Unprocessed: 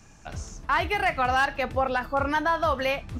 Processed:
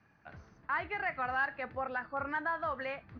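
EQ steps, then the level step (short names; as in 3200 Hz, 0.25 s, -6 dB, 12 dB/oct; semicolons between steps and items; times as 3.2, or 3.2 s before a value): HPF 100 Hz 12 dB/oct; rippled Chebyshev low-pass 6300 Hz, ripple 9 dB; air absorption 360 m; -3.5 dB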